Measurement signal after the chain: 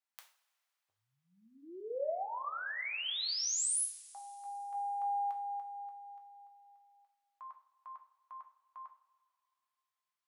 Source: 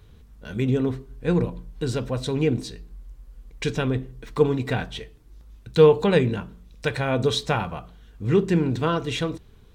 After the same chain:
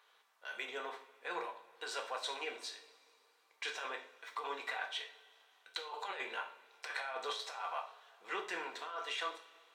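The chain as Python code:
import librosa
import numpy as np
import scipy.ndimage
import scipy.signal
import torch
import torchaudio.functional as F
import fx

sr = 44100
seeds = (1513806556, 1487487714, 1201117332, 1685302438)

y = scipy.signal.sosfilt(scipy.signal.butter(4, 740.0, 'highpass', fs=sr, output='sos'), x)
y = fx.high_shelf(y, sr, hz=4500.0, db=-10.0)
y = fx.over_compress(y, sr, threshold_db=-36.0, ratio=-1.0)
y = fx.rev_double_slope(y, sr, seeds[0], early_s=0.39, late_s=2.6, knee_db=-21, drr_db=2.5)
y = y * 10.0 ** (-6.0 / 20.0)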